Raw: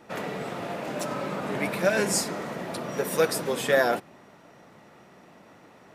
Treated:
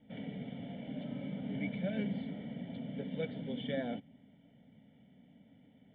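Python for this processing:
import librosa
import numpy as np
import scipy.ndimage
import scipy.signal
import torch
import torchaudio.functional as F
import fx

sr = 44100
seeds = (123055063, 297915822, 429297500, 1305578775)

y = fx.formant_cascade(x, sr, vowel='i')
y = fx.fixed_phaser(y, sr, hz=1700.0, stages=8)
y = F.gain(torch.from_numpy(y), 8.0).numpy()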